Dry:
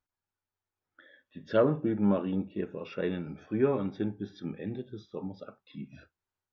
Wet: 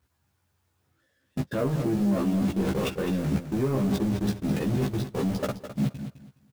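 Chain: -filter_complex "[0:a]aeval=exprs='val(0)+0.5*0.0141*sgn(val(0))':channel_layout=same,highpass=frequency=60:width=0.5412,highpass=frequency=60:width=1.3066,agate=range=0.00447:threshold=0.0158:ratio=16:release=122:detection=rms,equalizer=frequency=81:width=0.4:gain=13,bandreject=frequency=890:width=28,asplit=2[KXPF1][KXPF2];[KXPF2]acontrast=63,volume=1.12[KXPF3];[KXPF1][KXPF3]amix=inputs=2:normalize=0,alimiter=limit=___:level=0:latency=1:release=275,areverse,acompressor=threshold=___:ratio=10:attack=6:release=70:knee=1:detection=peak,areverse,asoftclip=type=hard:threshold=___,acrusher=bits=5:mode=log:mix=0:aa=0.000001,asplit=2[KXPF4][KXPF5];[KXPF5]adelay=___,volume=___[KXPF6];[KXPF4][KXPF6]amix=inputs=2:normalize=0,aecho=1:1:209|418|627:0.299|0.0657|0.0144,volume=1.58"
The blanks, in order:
0.376, 0.0355, 0.0447, 15, 0.708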